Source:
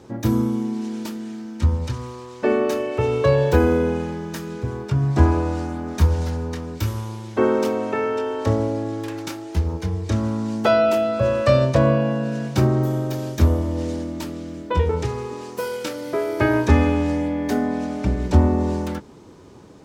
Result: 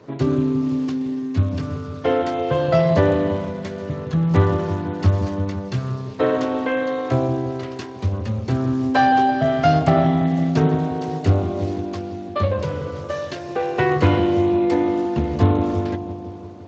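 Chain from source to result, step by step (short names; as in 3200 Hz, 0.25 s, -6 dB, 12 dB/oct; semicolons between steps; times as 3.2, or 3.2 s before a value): wide varispeed 1.19×; dark delay 0.169 s, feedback 67%, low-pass 650 Hz, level -7 dB; Speex 21 kbps 16000 Hz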